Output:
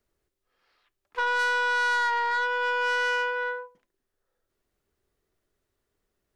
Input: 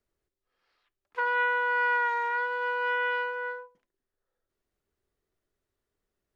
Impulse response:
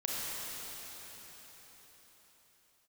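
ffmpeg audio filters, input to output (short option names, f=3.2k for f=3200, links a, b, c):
-filter_complex "[0:a]asettb=1/sr,asplit=3[a][b][c];[a]atrim=end=1.394[d];[b]atrim=start=1.39:end=3.44,asetpts=PTS-STARTPTS,afade=t=in:d=0.004:c=qsin,afade=t=out:st=2.046:d=0.004:c=qsin,equalizer=f=3.9k:w=0.83:g=5[e];[c]atrim=start=3.436[f];[d][e]acrossfade=d=0.004:c1=hsin:c2=qsin[g];[g][f]acrossfade=d=0.004:c1=qsin:c2=hsin,asoftclip=type=tanh:threshold=-24.5dB,volume=5dB"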